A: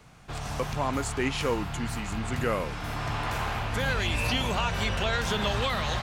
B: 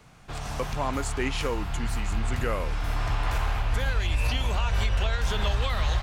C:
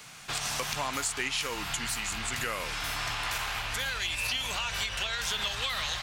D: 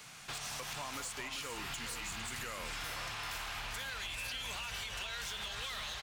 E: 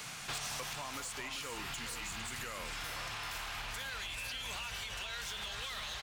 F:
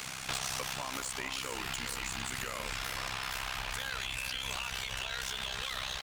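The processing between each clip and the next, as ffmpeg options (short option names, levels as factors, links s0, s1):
-af "asubboost=boost=8.5:cutoff=61,alimiter=limit=0.158:level=0:latency=1:release=212"
-af "tiltshelf=f=1200:g=-10,acompressor=threshold=0.0178:ratio=4,lowshelf=f=100:t=q:w=1.5:g=-6.5,volume=1.88"
-filter_complex "[0:a]acompressor=threshold=0.02:ratio=4,volume=44.7,asoftclip=hard,volume=0.0224,asplit=2[s0][s1];[s1]aecho=0:1:395|454:0.316|0.282[s2];[s0][s2]amix=inputs=2:normalize=0,volume=0.631"
-af "alimiter=level_in=7.94:limit=0.0631:level=0:latency=1:release=252,volume=0.126,volume=2.51"
-af "acrusher=bits=10:mix=0:aa=0.000001,tremolo=f=65:d=0.824,volume=2.37"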